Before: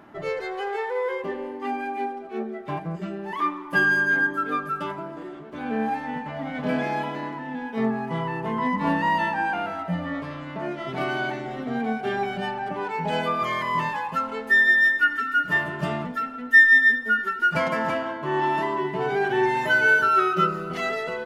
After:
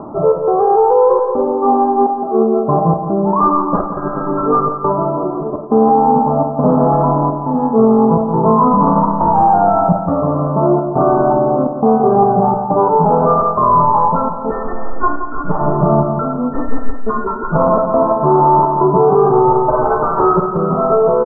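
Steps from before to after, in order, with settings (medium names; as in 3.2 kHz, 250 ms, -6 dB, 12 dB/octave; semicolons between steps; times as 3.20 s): self-modulated delay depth 0.59 ms; steep low-pass 1.2 kHz 72 dB/octave; dynamic bell 300 Hz, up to -3 dB, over -47 dBFS, Q 3.6; reverse; upward compressor, threshold -33 dBFS; reverse; trance gate "xxxx..xxxxx" 189 bpm -60 dB; feedback comb 440 Hz, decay 0.36 s, harmonics odd, mix 60%; feedback delay 171 ms, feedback 46%, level -9 dB; on a send at -5.5 dB: reverberation RT60 0.35 s, pre-delay 5 ms; on the sum: loudness maximiser +27.5 dB; trim -2 dB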